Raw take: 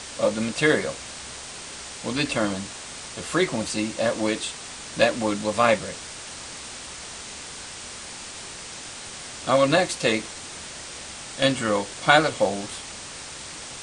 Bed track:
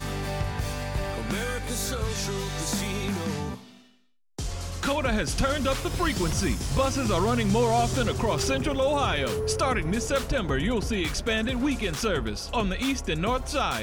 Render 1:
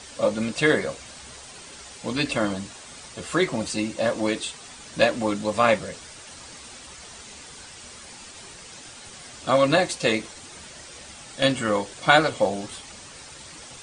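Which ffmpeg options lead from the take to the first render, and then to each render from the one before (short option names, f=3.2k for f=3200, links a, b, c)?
-af "afftdn=nr=8:nf=-38"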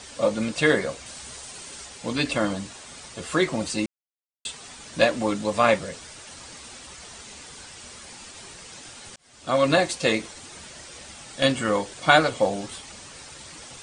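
-filter_complex "[0:a]asettb=1/sr,asplit=3[a][b][c];[a]atrim=end=1.064[d];[b]atrim=start=1.06:end=1.86,asetpts=PTS-STARTPTS,afade=t=in:d=0.004:c=qsin,afade=t=out:st=0.796:d=0.004:c=qsin,highshelf=f=6.2k:g=7[e];[c]atrim=start=1.856[f];[d][e]acrossfade=d=0.004:c1=hsin:c2=qsin[g];[g][f]acrossfade=d=0.004:c1=qsin:c2=hsin,asplit=4[h][i][j][k];[h]atrim=end=3.86,asetpts=PTS-STARTPTS,afade=t=out:st=3.856:d=0.004:c=hsin[l];[i]atrim=start=3.86:end=4.45,asetpts=PTS-STARTPTS,volume=0[m];[j]atrim=start=4.45:end=9.16,asetpts=PTS-STARTPTS,afade=t=in:d=0.004:c=hsin,afade=t=out:st=4.706:d=0.004:c=hsin[n];[k]atrim=start=9.16,asetpts=PTS-STARTPTS,afade=t=in:d=0.53[o];[l][m][n][o]concat=n=4:v=0:a=1"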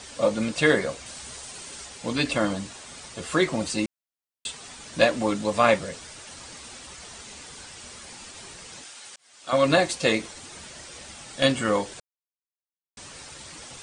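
-filter_complex "[0:a]asettb=1/sr,asplit=3[a][b][c];[a]atrim=end=8.844[d];[b]atrim=start=8.84:end=9.53,asetpts=PTS-STARTPTS,afade=t=in:d=0.004:c=qsin,afade=t=out:st=0.686:d=0.004:c=qsin,highpass=f=1k:p=1[e];[c]atrim=start=9.526[f];[d][e]acrossfade=d=0.004:c1=hsin:c2=qsin[g];[g][f]acrossfade=d=0.004:c1=qsin:c2=hsin,asplit=3[h][i][j];[h]atrim=end=12,asetpts=PTS-STARTPTS,afade=t=out:st=11.996:d=0.004:c=hsin[k];[i]atrim=start=12:end=12.97,asetpts=PTS-STARTPTS,volume=0[l];[j]atrim=start=12.97,asetpts=PTS-STARTPTS,afade=t=in:d=0.004:c=hsin[m];[k][l][m]concat=n=3:v=0:a=1"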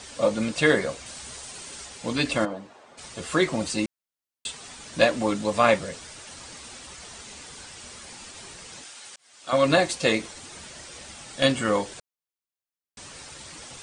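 -filter_complex "[0:a]asplit=3[a][b][c];[a]afade=t=out:st=2.44:d=0.02[d];[b]bandpass=f=630:t=q:w=0.95,afade=t=in:st=2.44:d=0.02,afade=t=out:st=2.97:d=0.02[e];[c]afade=t=in:st=2.97:d=0.02[f];[d][e][f]amix=inputs=3:normalize=0"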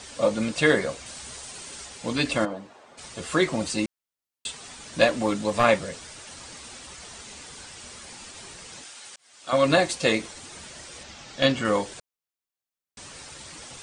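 -filter_complex "[0:a]asettb=1/sr,asplit=3[a][b][c];[a]atrim=end=5.084[d];[b]atrim=start=5.08:end=5.64,asetpts=PTS-STARTPTS,afade=t=in:d=0.004:c=qsin,afade=t=out:st=0.556:d=0.004:c=qsin,aeval=exprs='clip(val(0),-1,0.112)':c=same[e];[c]atrim=start=5.636[f];[d][e]acrossfade=d=0.004:c1=hsin:c2=qsin[g];[g][f]acrossfade=d=0.004:c1=qsin:c2=hsin,asettb=1/sr,asplit=3[h][i][j];[h]atrim=end=11.034[k];[i]atrim=start=11.03:end=11.65,asetpts=PTS-STARTPTS,afade=t=in:d=0.004:c=qsin,afade=t=out:st=0.616:d=0.004:c=qsin,lowpass=f=6.6k:w=0.5412,lowpass=f=6.6k:w=1.3066[l];[j]atrim=start=11.646[m];[k][l]acrossfade=d=0.004:c1=hsin:c2=qsin[n];[n][m]acrossfade=d=0.004:c1=qsin:c2=hsin"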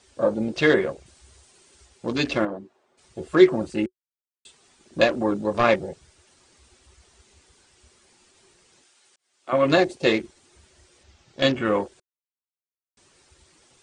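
-af "afwtdn=0.02,equalizer=f=370:w=5.6:g=11.5"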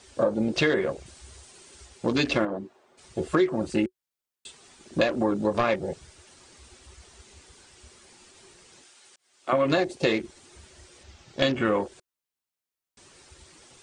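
-filter_complex "[0:a]asplit=2[a][b];[b]alimiter=limit=-10.5dB:level=0:latency=1:release=25,volume=-1.5dB[c];[a][c]amix=inputs=2:normalize=0,acompressor=threshold=-21dB:ratio=4"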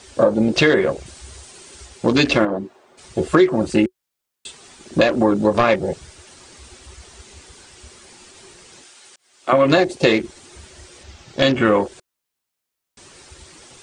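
-af "volume=8.5dB,alimiter=limit=-2dB:level=0:latency=1"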